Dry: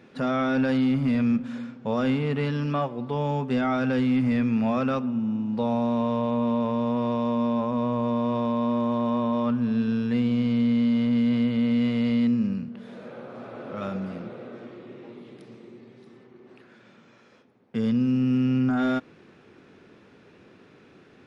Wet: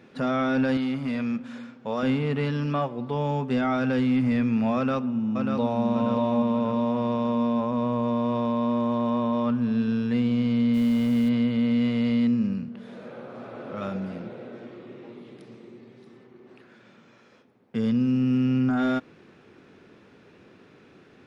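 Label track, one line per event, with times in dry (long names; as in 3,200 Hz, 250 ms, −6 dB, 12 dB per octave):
0.770000	2.030000	low-shelf EQ 240 Hz −10.5 dB
4.760000	5.830000	delay throw 590 ms, feedback 45%, level −4.5 dB
10.730000	11.280000	background noise pink −49 dBFS
13.900000	14.740000	notch filter 1,200 Hz, Q 8.4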